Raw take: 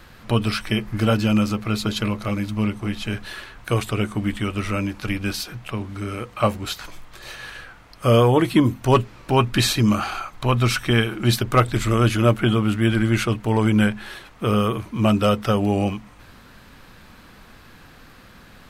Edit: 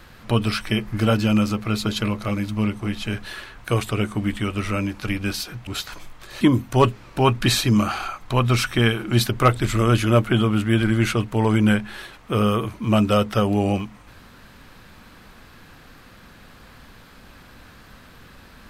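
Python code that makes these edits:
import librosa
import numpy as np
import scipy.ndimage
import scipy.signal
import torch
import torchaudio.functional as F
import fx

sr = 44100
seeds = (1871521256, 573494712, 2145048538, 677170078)

y = fx.edit(x, sr, fx.cut(start_s=5.67, length_s=0.92),
    fx.cut(start_s=7.33, length_s=1.2), tone=tone)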